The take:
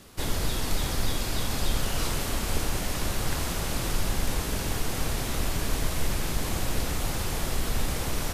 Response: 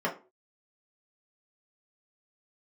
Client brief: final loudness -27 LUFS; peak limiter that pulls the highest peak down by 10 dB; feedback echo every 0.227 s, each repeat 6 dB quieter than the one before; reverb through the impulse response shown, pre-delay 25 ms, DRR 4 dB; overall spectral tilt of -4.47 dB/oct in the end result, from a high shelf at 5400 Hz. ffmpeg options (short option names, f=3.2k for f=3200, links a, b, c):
-filter_complex "[0:a]highshelf=f=5.4k:g=-7,alimiter=limit=-23.5dB:level=0:latency=1,aecho=1:1:227|454|681|908|1135|1362:0.501|0.251|0.125|0.0626|0.0313|0.0157,asplit=2[a][b];[1:a]atrim=start_sample=2205,adelay=25[c];[b][c]afir=irnorm=-1:irlink=0,volume=-14dB[d];[a][d]amix=inputs=2:normalize=0,volume=6dB"